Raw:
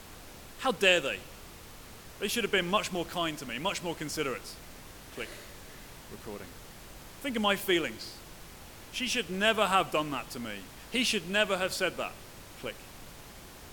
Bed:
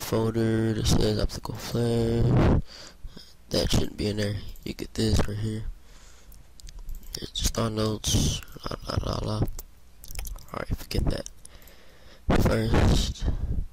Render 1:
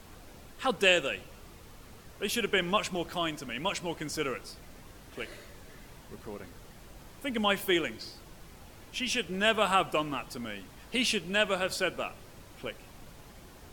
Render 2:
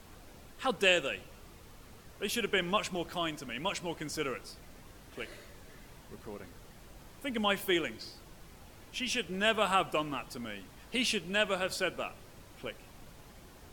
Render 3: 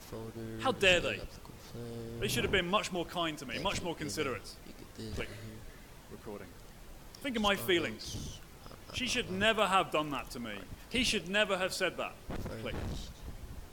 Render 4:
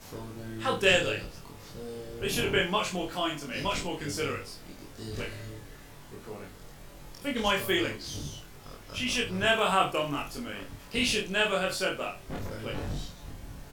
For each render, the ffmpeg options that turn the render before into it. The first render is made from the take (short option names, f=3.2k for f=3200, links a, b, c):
-af "afftdn=nr=6:nf=-49"
-af "volume=-2.5dB"
-filter_complex "[1:a]volume=-18.5dB[a];[0:a][a]amix=inputs=2:normalize=0"
-filter_complex "[0:a]asplit=2[a][b];[b]adelay=21,volume=-2dB[c];[a][c]amix=inputs=2:normalize=0,asplit=2[d][e];[e]aecho=0:1:28|72:0.668|0.237[f];[d][f]amix=inputs=2:normalize=0"